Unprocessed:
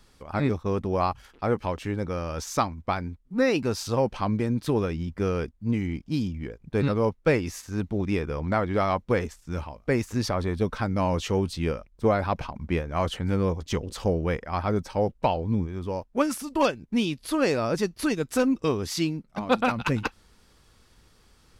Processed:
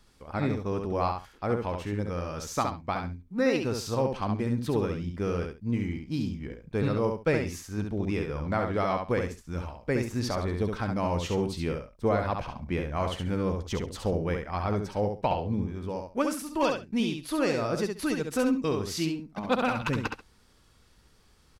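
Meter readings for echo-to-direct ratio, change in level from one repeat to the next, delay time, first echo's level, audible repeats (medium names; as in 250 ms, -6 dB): -5.0 dB, -14.5 dB, 68 ms, -5.0 dB, 2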